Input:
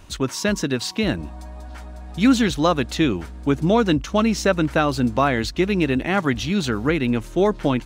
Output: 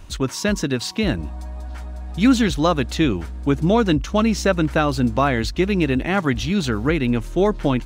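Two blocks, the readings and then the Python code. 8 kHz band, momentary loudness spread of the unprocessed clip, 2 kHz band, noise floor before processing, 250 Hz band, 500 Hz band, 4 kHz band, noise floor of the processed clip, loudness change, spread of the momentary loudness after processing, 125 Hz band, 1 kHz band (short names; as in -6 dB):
0.0 dB, 10 LU, 0.0 dB, -37 dBFS, +1.0 dB, +0.5 dB, 0.0 dB, -32 dBFS, +0.5 dB, 9 LU, +2.5 dB, 0.0 dB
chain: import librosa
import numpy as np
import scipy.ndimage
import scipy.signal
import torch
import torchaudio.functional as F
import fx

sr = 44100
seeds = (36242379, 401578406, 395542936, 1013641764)

y = fx.low_shelf(x, sr, hz=76.0, db=9.0)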